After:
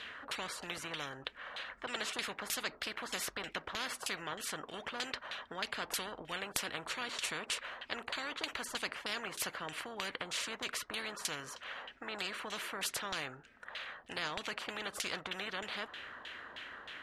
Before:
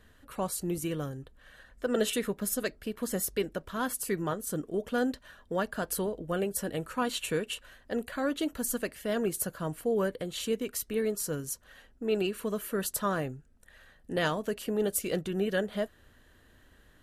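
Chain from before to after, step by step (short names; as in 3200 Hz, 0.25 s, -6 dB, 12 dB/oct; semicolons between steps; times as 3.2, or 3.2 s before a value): differentiator; LFO low-pass saw down 3.2 Hz 880–3200 Hz; high shelf 5200 Hz -11 dB; spectral compressor 4:1; gain +16.5 dB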